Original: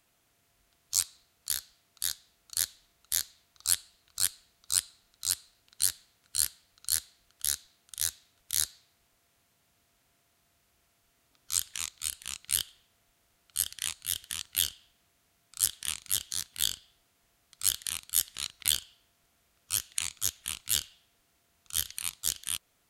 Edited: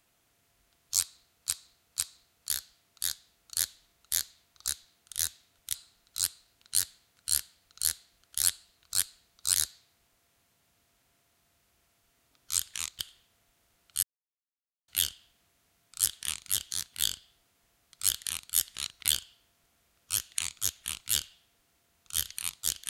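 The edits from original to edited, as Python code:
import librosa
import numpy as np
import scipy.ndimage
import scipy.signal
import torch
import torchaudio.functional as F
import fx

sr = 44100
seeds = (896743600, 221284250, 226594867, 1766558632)

y = fx.edit(x, sr, fx.repeat(start_s=0.99, length_s=0.5, count=3),
    fx.swap(start_s=3.68, length_s=1.13, other_s=7.5, other_length_s=1.06),
    fx.cut(start_s=11.99, length_s=0.6),
    fx.silence(start_s=13.63, length_s=0.85), tone=tone)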